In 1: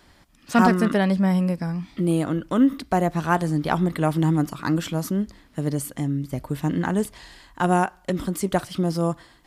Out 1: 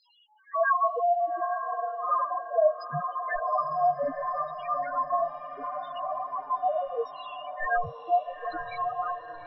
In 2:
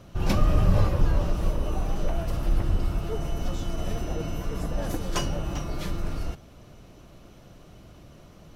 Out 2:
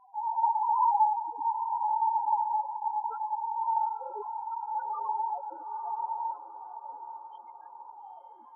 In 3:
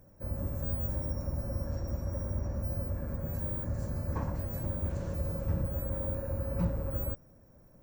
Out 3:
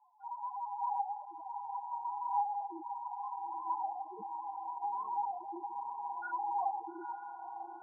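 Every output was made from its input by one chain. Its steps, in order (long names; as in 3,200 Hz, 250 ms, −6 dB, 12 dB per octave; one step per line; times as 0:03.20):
high shelf with overshoot 1,700 Hz +6 dB, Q 3
notch filter 3,500 Hz, Q 13
in parallel at −3 dB: downward compressor, threshold −28 dBFS
on the sum: ring modulation 890 Hz
multi-voice chorus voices 4, 1.4 Hz, delay 24 ms, depth 3 ms
auto-filter low-pass saw down 0.71 Hz 380–5,700 Hz
spectral peaks only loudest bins 2
on a send: feedback delay with all-pass diffusion 893 ms, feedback 52%, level −10 dB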